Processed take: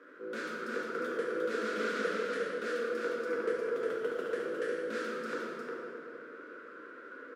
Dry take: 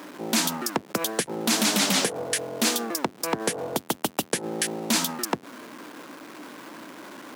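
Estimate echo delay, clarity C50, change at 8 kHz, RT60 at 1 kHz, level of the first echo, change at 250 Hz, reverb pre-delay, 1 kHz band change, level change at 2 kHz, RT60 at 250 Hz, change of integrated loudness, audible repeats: 0.356 s, -4.0 dB, -29.5 dB, 2.3 s, -4.0 dB, -12.5 dB, 4 ms, -9.0 dB, -5.0 dB, 3.4 s, -10.0 dB, 1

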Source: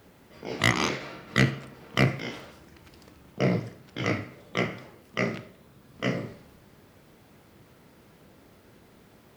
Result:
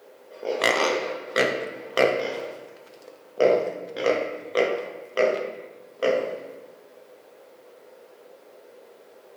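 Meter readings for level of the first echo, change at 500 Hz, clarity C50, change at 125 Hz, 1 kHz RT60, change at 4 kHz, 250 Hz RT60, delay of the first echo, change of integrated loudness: none, +11.0 dB, 6.0 dB, under -15 dB, 1.1 s, +1.5 dB, 1.6 s, none, +3.5 dB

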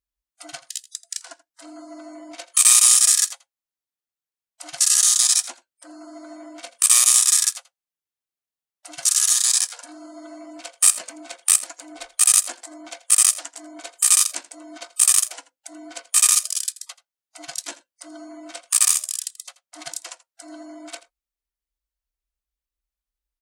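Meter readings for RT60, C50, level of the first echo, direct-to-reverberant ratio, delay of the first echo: none, none, -18.0 dB, none, 83 ms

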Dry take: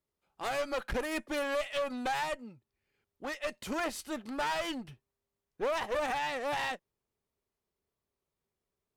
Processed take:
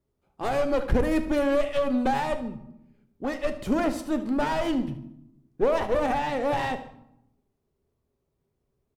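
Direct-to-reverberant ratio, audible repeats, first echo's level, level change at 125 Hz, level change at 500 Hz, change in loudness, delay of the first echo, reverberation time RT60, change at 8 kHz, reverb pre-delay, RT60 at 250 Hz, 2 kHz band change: 8.0 dB, 2, -15.0 dB, +15.5 dB, +9.0 dB, +8.0 dB, 75 ms, 0.80 s, -1.0 dB, 3 ms, 1.2 s, +1.5 dB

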